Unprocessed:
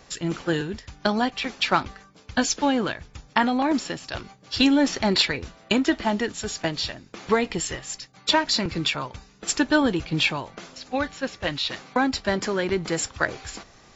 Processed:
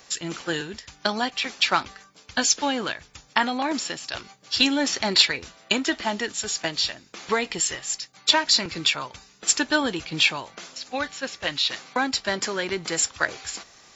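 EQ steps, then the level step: tilt EQ +2.5 dB/octave; -1.0 dB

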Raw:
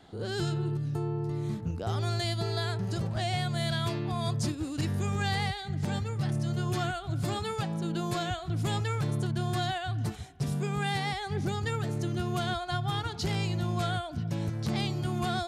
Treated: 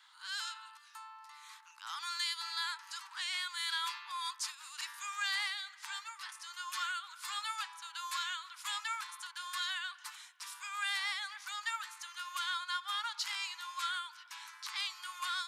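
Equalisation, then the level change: steep high-pass 920 Hz 96 dB/octave; 0.0 dB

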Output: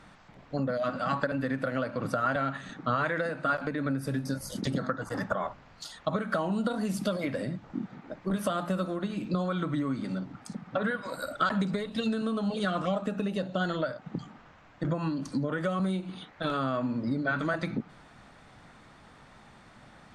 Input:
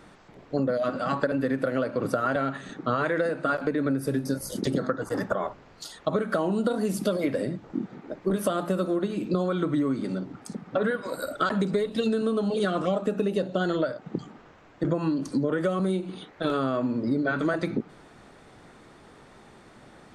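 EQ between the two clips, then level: peaking EQ 390 Hz -10.5 dB 0.92 oct; treble shelf 9.3 kHz -10 dB; 0.0 dB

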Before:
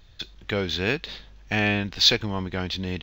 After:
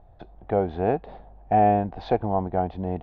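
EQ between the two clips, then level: resonant low-pass 740 Hz, resonance Q 6.7; 0.0 dB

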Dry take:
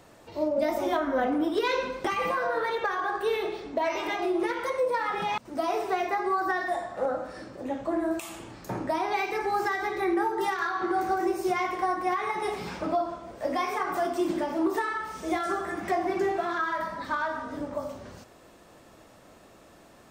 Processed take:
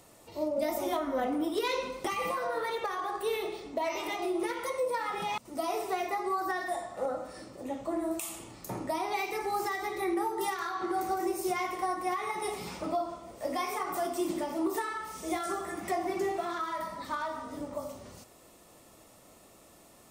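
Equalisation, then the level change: treble shelf 5.8 kHz +7 dB; peaking EQ 11 kHz +8 dB 0.88 oct; band-stop 1.6 kHz, Q 5.9; -4.5 dB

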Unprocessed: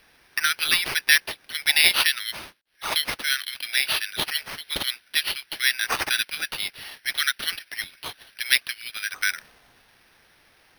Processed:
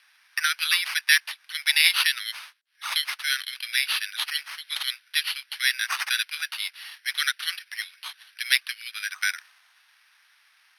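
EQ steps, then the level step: high-pass 1.1 kHz 24 dB/octave; Bessel low-pass 12 kHz, order 4; -1.0 dB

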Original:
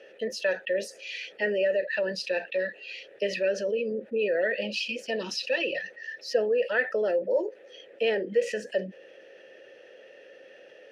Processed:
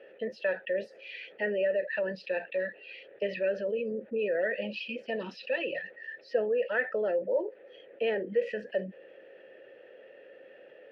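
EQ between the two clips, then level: dynamic bell 350 Hz, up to -3 dB, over -36 dBFS, Q 0.95; distance through air 410 m; 0.0 dB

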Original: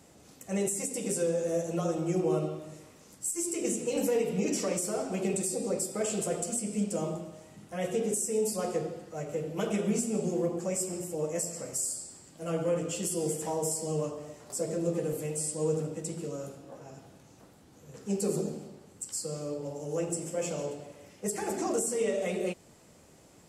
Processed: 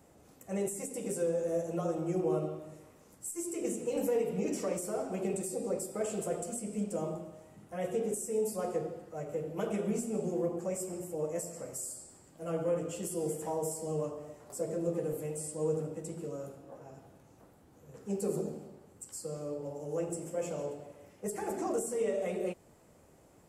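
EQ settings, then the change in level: peaking EQ 190 Hz -4.5 dB 2 oct; peaking EQ 4.7 kHz -11 dB 2.6 oct; 0.0 dB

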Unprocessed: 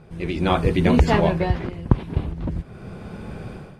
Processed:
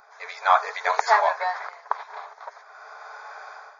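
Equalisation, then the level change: brick-wall FIR band-pass 430–7100 Hz; static phaser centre 1.2 kHz, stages 4; +8.0 dB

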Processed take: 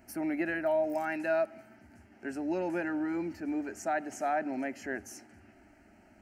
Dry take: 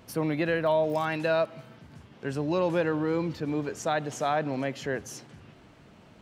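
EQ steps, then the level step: static phaser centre 720 Hz, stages 8; -2.0 dB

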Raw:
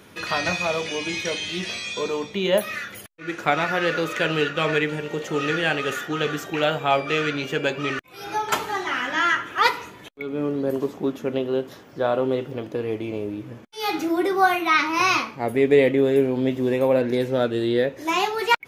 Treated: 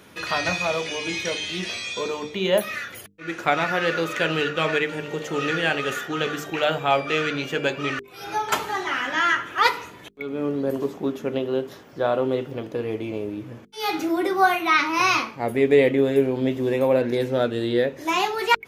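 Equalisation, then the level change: hum notches 50/100/150/200/250/300/350/400/450 Hz; 0.0 dB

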